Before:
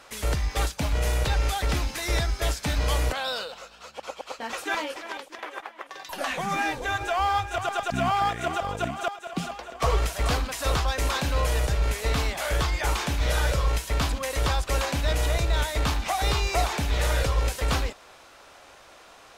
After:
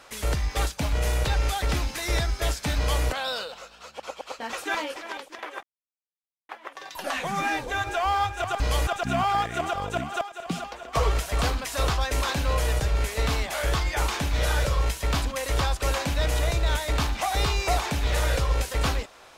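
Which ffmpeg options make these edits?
-filter_complex "[0:a]asplit=4[a][b][c][d];[a]atrim=end=5.63,asetpts=PTS-STARTPTS,afade=t=out:st=5.626:d=0.004:c=hsin,apad=pad_dur=0.86[e];[b]atrim=start=5.63:end=7.742,asetpts=PTS-STARTPTS,afade=t=in:d=0.004:c=hsin[f];[c]atrim=start=2.768:end=3.042[g];[d]atrim=start=7.738[h];[e][f]concat=n=2:v=0:a=1[i];[i][g]acrossfade=d=0.004:c1=hsin:c2=hsin[j];[j][h]acrossfade=d=0.004:c1=hsin:c2=hsin"

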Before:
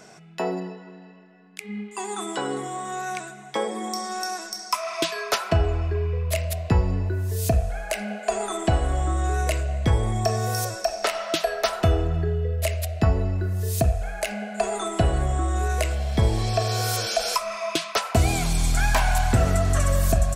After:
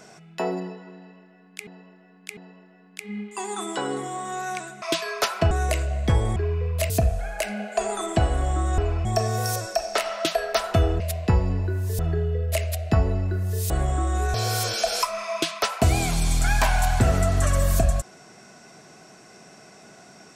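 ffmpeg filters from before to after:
-filter_complex "[0:a]asplit=13[a][b][c][d][e][f][g][h][i][j][k][l][m];[a]atrim=end=1.672[n];[b]atrim=start=0.968:end=1.672[o];[c]atrim=start=0.968:end=3.422[p];[d]atrim=start=4.918:end=5.612[q];[e]atrim=start=9.288:end=10.142[r];[f]atrim=start=5.878:end=6.422[s];[g]atrim=start=7.408:end=9.292[t];[h]atrim=start=5.608:end=5.882[u];[i]atrim=start=10.138:end=12.092[v];[j]atrim=start=6.418:end=7.412[w];[k]atrim=start=12.088:end=13.802[x];[l]atrim=start=15.108:end=15.752[y];[m]atrim=start=16.668[z];[n][o]acrossfade=d=0.004:c1=hsin:c2=hsin[aa];[aa][p]acrossfade=d=0.004:c1=hsin:c2=hsin[ab];[ab][q]acrossfade=d=0.004:c1=hsin:c2=hsin[ac];[ac][r]acrossfade=d=0.004:c1=hsin:c2=hsin[ad];[ad][s]acrossfade=d=0.004:c1=hsin:c2=hsin[ae];[ae][t]acrossfade=d=0.004:c1=hsin:c2=hsin[af];[af][u]acrossfade=d=0.004:c1=hsin:c2=hsin[ag];[ag][v]acrossfade=d=0.004:c1=hsin:c2=hsin[ah];[ah][w]acrossfade=d=0.004:c1=hsin:c2=hsin[ai];[ai][x]acrossfade=d=0.004:c1=hsin:c2=hsin[aj];[aj][y]acrossfade=d=0.004:c1=hsin:c2=hsin[ak];[ak][z]acrossfade=d=0.004:c1=hsin:c2=hsin"

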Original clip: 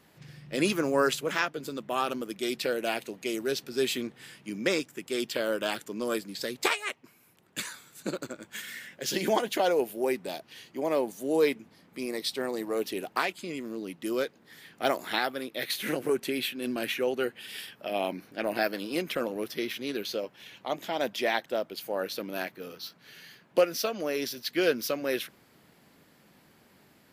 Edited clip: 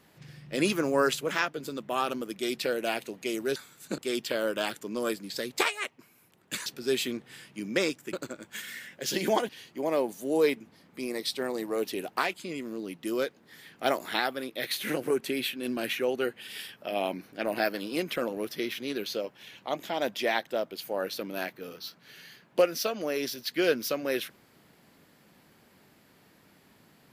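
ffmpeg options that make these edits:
-filter_complex "[0:a]asplit=6[a][b][c][d][e][f];[a]atrim=end=3.562[g];[b]atrim=start=7.708:end=8.132[h];[c]atrim=start=5.028:end=7.712[i];[d]atrim=start=3.558:end=5.032[j];[e]atrim=start=8.128:end=9.492[k];[f]atrim=start=10.478[l];[g][h]acrossfade=d=0.004:c1=hsin:c2=hsin[m];[m][i]acrossfade=d=0.004:c1=hsin:c2=hsin[n];[n][j]acrossfade=d=0.004:c1=hsin:c2=hsin[o];[o][k]acrossfade=d=0.004:c1=hsin:c2=hsin[p];[p][l]acrossfade=d=0.004:c1=hsin:c2=hsin"

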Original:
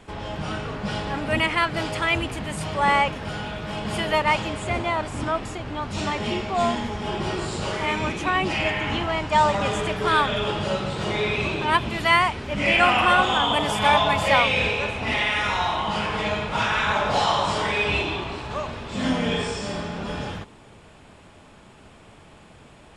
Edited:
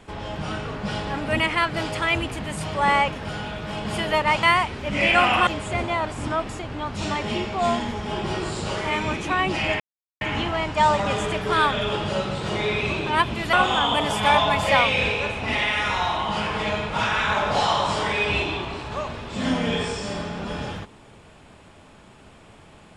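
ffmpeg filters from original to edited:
-filter_complex "[0:a]asplit=5[a][b][c][d][e];[a]atrim=end=4.432[f];[b]atrim=start=12.078:end=13.122[g];[c]atrim=start=4.428:end=8.76,asetpts=PTS-STARTPTS,afade=t=out:st=4.328:d=0.004:c=hsin,apad=pad_dur=0.41[h];[d]atrim=start=8.76:end=12.082,asetpts=PTS-STARTPTS,afade=t=in:d=0.004:c=hsin[i];[e]atrim=start=13.118[j];[f][g]acrossfade=d=0.004:c1=hsin:c2=hsin[k];[h][i]concat=n=2:v=0:a=1[l];[k][l]acrossfade=d=0.004:c1=hsin:c2=hsin[m];[m][j]acrossfade=d=0.004:c1=hsin:c2=hsin"

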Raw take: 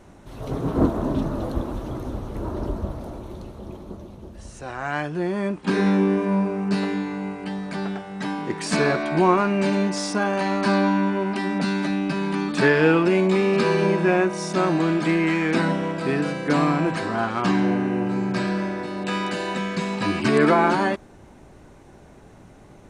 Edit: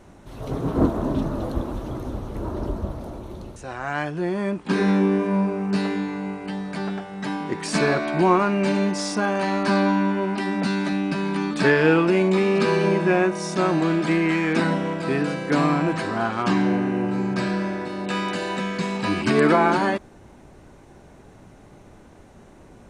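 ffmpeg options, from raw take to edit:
-filter_complex "[0:a]asplit=2[a][b];[a]atrim=end=3.562[c];[b]atrim=start=4.538[d];[c][d]acrossfade=d=0.004:c1=hsin:c2=hsin"

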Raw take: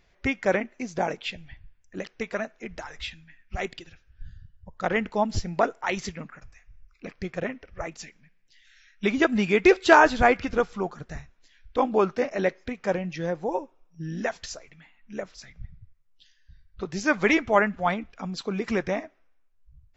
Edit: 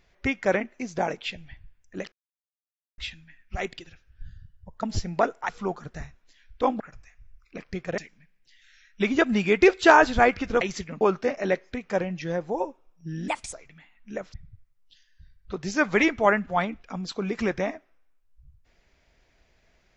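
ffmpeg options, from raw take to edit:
-filter_complex "[0:a]asplit=12[a][b][c][d][e][f][g][h][i][j][k][l];[a]atrim=end=2.12,asetpts=PTS-STARTPTS,afade=t=out:st=2.116:d=0.004:c=hsin[m];[b]atrim=start=2.12:end=2.98,asetpts=PTS-STARTPTS,volume=0[n];[c]atrim=start=2.98:end=4.832,asetpts=PTS-STARTPTS,afade=t=in:d=0.004:c=hsin[o];[d]atrim=start=5.228:end=5.892[p];[e]atrim=start=10.638:end=11.952[q];[f]atrim=start=6.288:end=7.472[r];[g]atrim=start=8.008:end=10.642[s];[h]atrim=start=5.888:end=6.292[t];[i]atrim=start=11.948:end=14.224[u];[j]atrim=start=14.22:end=14.55,asetpts=PTS-STARTPTS,asetrate=58653,aresample=44100,atrim=end_sample=10942,asetpts=PTS-STARTPTS[v];[k]atrim=start=14.546:end=15.362[w];[l]atrim=start=15.628[x];[m][n][o]concat=n=3:v=0:a=1[y];[y][p]acrossfade=d=0.004:c1=hsin:c2=hsin[z];[z][q]acrossfade=d=0.004:c1=hsin:c2=hsin[aa];[aa][r]acrossfade=d=0.004:c1=hsin:c2=hsin[ab];[ab][s]acrossfade=d=0.004:c1=hsin:c2=hsin[ac];[ac][t]acrossfade=d=0.004:c1=hsin:c2=hsin[ad];[ad][u]acrossfade=d=0.004:c1=hsin:c2=hsin[ae];[ae][v]acrossfade=d=0.004:c1=hsin:c2=hsin[af];[af][w]acrossfade=d=0.004:c1=hsin:c2=hsin[ag];[ag][x]acrossfade=d=0.004:c1=hsin:c2=hsin"

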